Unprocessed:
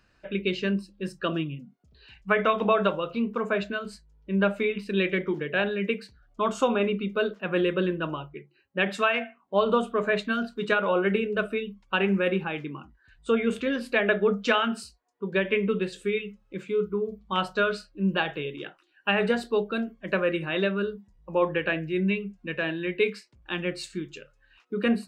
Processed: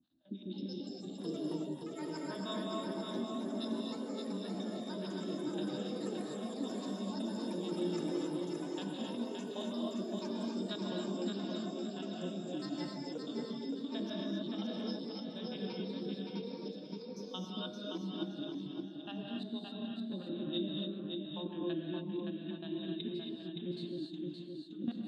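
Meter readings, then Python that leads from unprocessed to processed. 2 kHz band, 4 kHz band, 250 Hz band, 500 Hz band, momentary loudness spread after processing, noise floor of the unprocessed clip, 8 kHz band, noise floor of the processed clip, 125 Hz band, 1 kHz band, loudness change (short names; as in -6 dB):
-25.5 dB, -8.5 dB, -7.5 dB, -15.5 dB, 5 LU, -65 dBFS, n/a, -47 dBFS, -10.5 dB, -17.5 dB, -12.5 dB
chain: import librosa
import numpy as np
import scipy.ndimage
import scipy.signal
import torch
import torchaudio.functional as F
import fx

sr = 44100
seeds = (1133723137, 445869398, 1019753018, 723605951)

p1 = fx.spec_steps(x, sr, hold_ms=50)
p2 = fx.curve_eq(p1, sr, hz=(170.0, 300.0, 440.0, 640.0, 2400.0, 3600.0, 5200.0), db=(0, 10, -23, -10, -30, 4, -22))
p3 = fx.level_steps(p2, sr, step_db=17)
p4 = fx.echo_pitch(p3, sr, ms=357, semitones=6, count=3, db_per_echo=-6.0)
p5 = scipy.signal.sosfilt(scipy.signal.butter(2, 120.0, 'highpass', fs=sr, output='sos'), p4)
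p6 = fx.harmonic_tremolo(p5, sr, hz=6.2, depth_pct=100, crossover_hz=590.0)
p7 = fx.low_shelf(p6, sr, hz=220.0, db=-11.0)
p8 = p7 + fx.echo_feedback(p7, sr, ms=570, feedback_pct=31, wet_db=-4.5, dry=0)
p9 = fx.rev_gated(p8, sr, seeds[0], gate_ms=300, shape='rising', drr_db=-1.0)
y = F.gain(torch.from_numpy(p9), 1.5).numpy()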